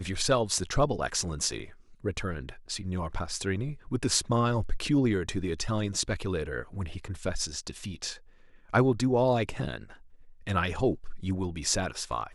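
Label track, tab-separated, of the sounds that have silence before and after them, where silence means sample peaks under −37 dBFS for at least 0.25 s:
2.040000	8.140000	sound
8.730000	9.910000	sound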